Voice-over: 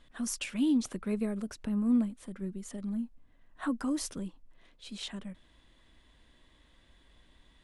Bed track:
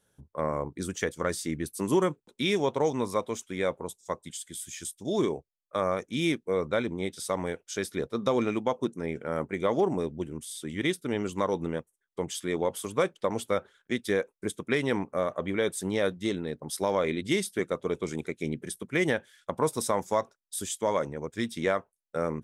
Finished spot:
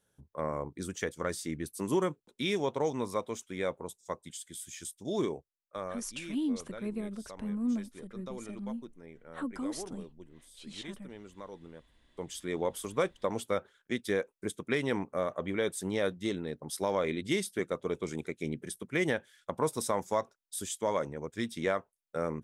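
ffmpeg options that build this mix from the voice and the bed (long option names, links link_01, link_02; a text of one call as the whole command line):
ffmpeg -i stem1.wav -i stem2.wav -filter_complex "[0:a]adelay=5750,volume=-4.5dB[link_01];[1:a]volume=10dB,afade=type=out:start_time=5.22:duration=0.94:silence=0.211349,afade=type=in:start_time=11.77:duration=0.9:silence=0.188365[link_02];[link_01][link_02]amix=inputs=2:normalize=0" out.wav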